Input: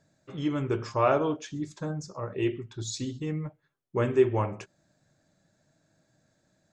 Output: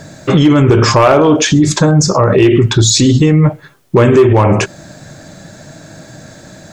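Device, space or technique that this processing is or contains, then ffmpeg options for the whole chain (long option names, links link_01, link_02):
loud club master: -af "acompressor=threshold=-29dB:ratio=2.5,asoftclip=type=hard:threshold=-24.5dB,alimiter=level_in=35.5dB:limit=-1dB:release=50:level=0:latency=1,volume=-1dB"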